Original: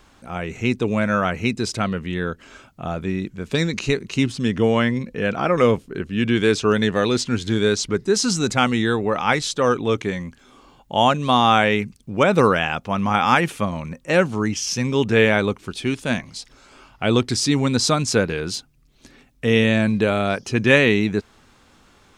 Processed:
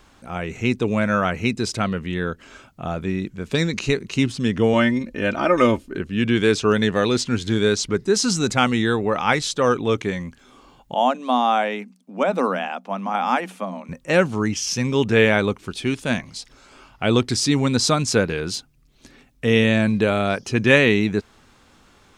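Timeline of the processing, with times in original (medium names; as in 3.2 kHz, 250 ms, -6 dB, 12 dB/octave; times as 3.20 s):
4.73–5.97 s: comb 3.3 ms
10.94–13.89 s: rippled Chebyshev high-pass 180 Hz, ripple 9 dB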